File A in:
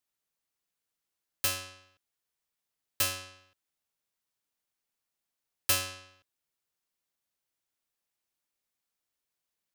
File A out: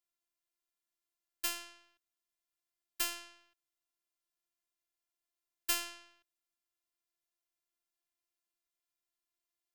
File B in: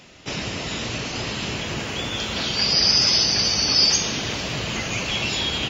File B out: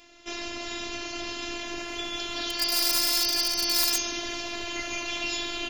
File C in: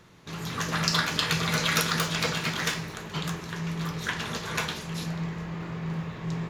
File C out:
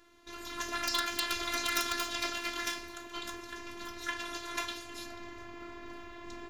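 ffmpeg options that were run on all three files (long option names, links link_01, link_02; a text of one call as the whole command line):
ffmpeg -i in.wav -af "aeval=exprs='(mod(3.98*val(0)+1,2)-1)/3.98':channel_layout=same,afftfilt=real='hypot(re,im)*cos(PI*b)':imag='0':win_size=512:overlap=0.75,volume=-2.5dB" out.wav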